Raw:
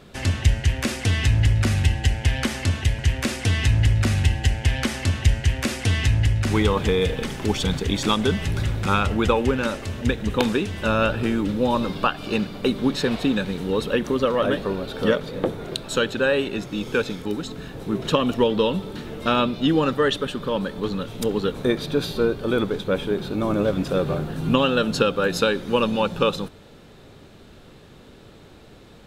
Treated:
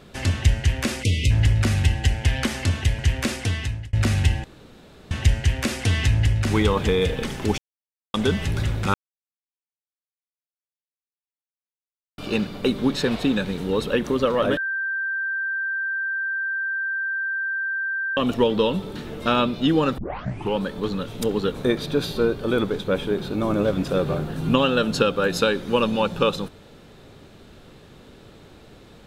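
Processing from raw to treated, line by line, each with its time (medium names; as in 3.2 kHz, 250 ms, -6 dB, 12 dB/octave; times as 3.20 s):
1.03–1.31 s: spectral selection erased 640–2000 Hz
3.30–3.93 s: fade out
4.44–5.11 s: room tone
7.58–8.14 s: mute
8.94–12.18 s: mute
14.57–18.17 s: bleep 1.57 kHz -23 dBFS
19.98 s: tape start 0.60 s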